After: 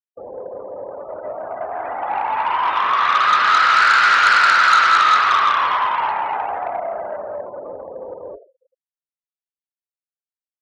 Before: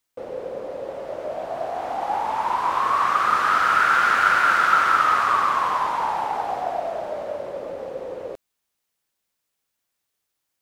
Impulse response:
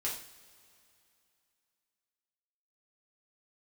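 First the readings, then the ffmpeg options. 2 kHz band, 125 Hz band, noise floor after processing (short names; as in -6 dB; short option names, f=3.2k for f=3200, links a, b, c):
+6.0 dB, n/a, under -85 dBFS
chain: -filter_complex "[0:a]asplit=2[a][b];[b]lowshelf=f=290:g=7.5[c];[1:a]atrim=start_sample=2205[d];[c][d]afir=irnorm=-1:irlink=0,volume=-3.5dB[e];[a][e]amix=inputs=2:normalize=0,afftfilt=real='re*gte(hypot(re,im),0.0282)':imag='im*gte(hypot(re,im),0.0282)':win_size=1024:overlap=0.75,acontrast=84,tiltshelf=f=930:g=-9,volume=-7.5dB"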